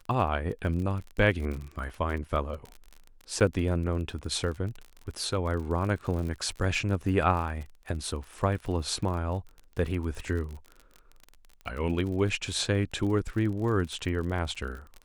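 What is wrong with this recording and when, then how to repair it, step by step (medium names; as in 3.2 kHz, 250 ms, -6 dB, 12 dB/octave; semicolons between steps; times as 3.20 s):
crackle 40 per s -35 dBFS
3.40–3.41 s: dropout 7.1 ms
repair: de-click; interpolate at 3.40 s, 7.1 ms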